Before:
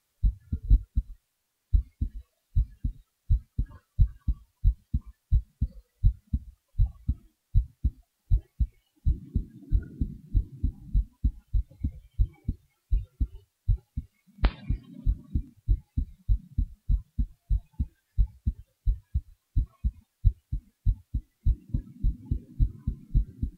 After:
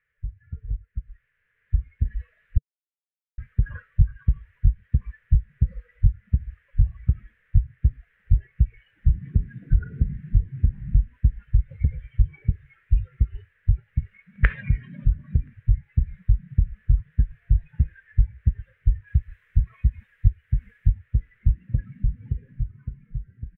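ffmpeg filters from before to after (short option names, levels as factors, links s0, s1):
-filter_complex "[0:a]asettb=1/sr,asplit=3[s0][s1][s2];[s0]atrim=end=19.074[s3];[s1]atrim=start=19.07:end=20.94,asetpts=PTS-STARTPTS,afade=t=in:d=0.004:c=qsin,afade=t=out:st=1.866:d=0.004:c=qsin,highshelf=f=2800:g=7.5[s4];[s2]atrim=start=20.936[s5];[s3][s4]acrossfade=d=0.004:c1=hsin:c2=qsin[s6];[s6][s5]acrossfade=d=0.004:c1=qsin:c2=hsin,asplit=3[s7][s8][s9];[s7]atrim=end=2.58,asetpts=PTS-STARTPTS,afade=t=out:st=2.576:d=0.004:c=hsin[s10];[s8]atrim=start=2.58:end=3.38,asetpts=PTS-STARTPTS,volume=0[s11];[s9]atrim=start=3.38,asetpts=PTS-STARTPTS,afade=t=in:d=0.004:c=hsin[s12];[s10][s11][s12]concat=n=3:v=0:a=1,acompressor=threshold=0.0316:ratio=2.5,firequalizer=gain_entry='entry(140,0);entry(310,-21);entry(450,1);entry(760,-19);entry(1700,14);entry(4400,-30)':delay=0.05:min_phase=1,dynaudnorm=f=160:g=21:m=5.01"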